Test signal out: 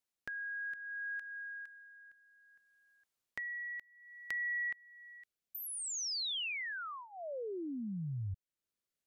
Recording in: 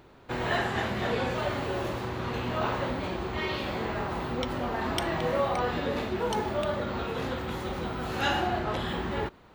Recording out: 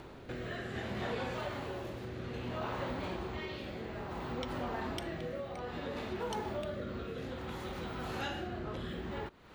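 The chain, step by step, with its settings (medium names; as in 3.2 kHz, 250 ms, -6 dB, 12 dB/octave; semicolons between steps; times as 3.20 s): compression 2.5:1, threshold -52 dBFS; rotary cabinet horn 0.6 Hz; trim +9 dB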